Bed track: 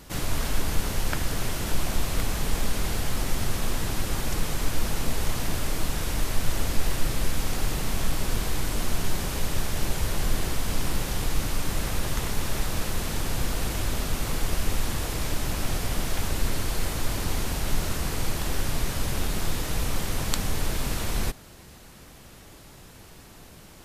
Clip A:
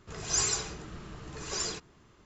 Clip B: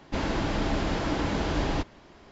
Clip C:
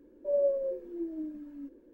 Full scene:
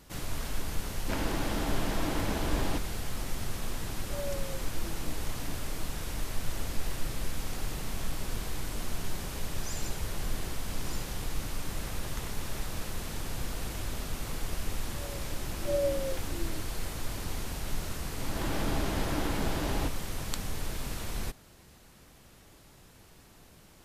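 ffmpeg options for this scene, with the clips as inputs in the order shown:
-filter_complex "[2:a]asplit=2[s0][s1];[3:a]asplit=2[s2][s3];[0:a]volume=0.398[s4];[s3]acrossover=split=330[s5][s6];[s6]adelay=720[s7];[s5][s7]amix=inputs=2:normalize=0[s8];[s1]dynaudnorm=f=120:g=5:m=3.76[s9];[s0]atrim=end=2.31,asetpts=PTS-STARTPTS,volume=0.562,afade=t=in:d=0.004:c=hsin,afade=t=out:st=2.306:d=0.004:c=hsin,adelay=960[s10];[s2]atrim=end=1.93,asetpts=PTS-STARTPTS,volume=0.266,afade=t=in:d=0.004:c=hsin,afade=t=out:st=1.926:d=0.004:c=hsin,adelay=169785S[s11];[1:a]atrim=end=2.25,asetpts=PTS-STARTPTS,volume=0.178,afade=t=in:d=0.004:c=hsin,afade=t=out:st=2.246:d=0.004:c=hsin,adelay=9330[s12];[s8]atrim=end=1.93,asetpts=PTS-STARTPTS,volume=0.841,afade=t=in:d=0.004:c=hsin,afade=t=out:st=1.926:d=0.004:c=hsin,adelay=14680[s13];[s9]atrim=end=2.31,asetpts=PTS-STARTPTS,volume=0.158,afade=t=in:d=0.004:c=hsin,afade=t=out:st=2.306:d=0.004:c=hsin,adelay=18060[s14];[s4][s10][s11][s12][s13][s14]amix=inputs=6:normalize=0"

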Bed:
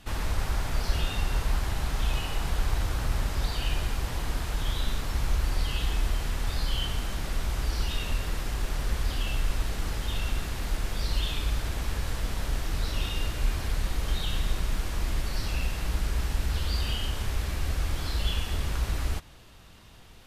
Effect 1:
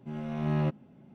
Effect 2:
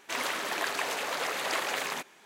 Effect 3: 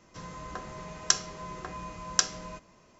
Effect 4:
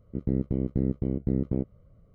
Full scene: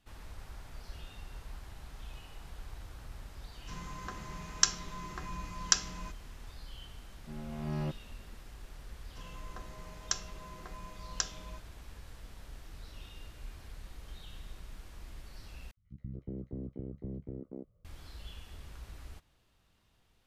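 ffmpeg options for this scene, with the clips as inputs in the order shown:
-filter_complex "[3:a]asplit=2[s0][s1];[0:a]volume=0.112[s2];[s0]equalizer=f=570:w=1.8:g=-11[s3];[4:a]acrossover=split=200|1700[s4][s5][s6];[s4]adelay=60[s7];[s5]adelay=290[s8];[s7][s8][s6]amix=inputs=3:normalize=0[s9];[s2]asplit=2[s10][s11];[s10]atrim=end=15.714[s12];[s9]atrim=end=2.14,asetpts=PTS-STARTPTS,volume=0.237[s13];[s11]atrim=start=17.846[s14];[s3]atrim=end=2.99,asetpts=PTS-STARTPTS,volume=0.841,afade=t=in:d=0.004:c=hsin,afade=t=out:st=2.986:d=0.004:c=hsin,adelay=155673S[s15];[1:a]atrim=end=1.14,asetpts=PTS-STARTPTS,volume=0.422,afade=t=in:d=0.004:c=hsin,afade=t=out:st=1.136:d=0.004:c=hsin,adelay=7210[s16];[s1]atrim=end=2.99,asetpts=PTS-STARTPTS,volume=0.335,afade=t=in:d=0.004:c=hsin,afade=t=out:st=2.986:d=0.004:c=hsin,adelay=9010[s17];[s12][s13]acrossfade=d=0.004:c1=hsin:c2=hsin[s18];[s18][s14]acrossfade=d=0.004:c1=hsin:c2=hsin[s19];[s19][s15][s16][s17]amix=inputs=4:normalize=0"

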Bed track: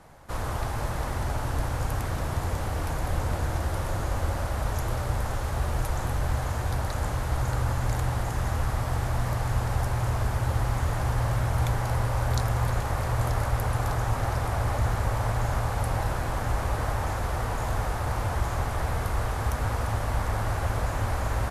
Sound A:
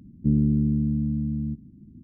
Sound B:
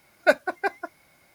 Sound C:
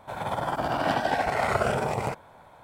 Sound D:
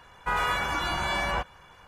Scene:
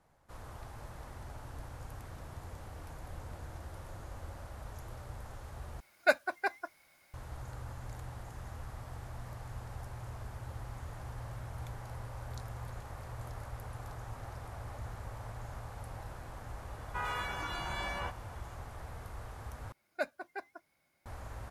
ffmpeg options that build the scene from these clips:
-filter_complex "[2:a]asplit=2[s0][s1];[0:a]volume=0.133[s2];[s0]equalizer=f=180:w=0.38:g=-8.5[s3];[s2]asplit=3[s4][s5][s6];[s4]atrim=end=5.804[s7];[s3]atrim=end=1.34,asetpts=PTS-STARTPTS,volume=0.596[s8];[s5]atrim=start=7.136:end=19.724[s9];[s1]atrim=end=1.34,asetpts=PTS-STARTPTS,volume=0.15[s10];[s6]atrim=start=21.056[s11];[4:a]atrim=end=1.87,asetpts=PTS-STARTPTS,volume=0.299,afade=t=in:d=0.004:c=hsin,afade=t=out:st=1.866:d=0.004:c=hsin,adelay=735588S[s12];[s7][s8]acrossfade=d=0.004:c1=hsin:c2=hsin[s13];[s13][s9]acrossfade=d=0.004:c1=hsin:c2=hsin[s14];[s14][s10]acrossfade=d=0.004:c1=hsin:c2=hsin[s15];[s15][s11]acrossfade=d=0.004:c1=hsin:c2=hsin[s16];[s16][s12]amix=inputs=2:normalize=0"

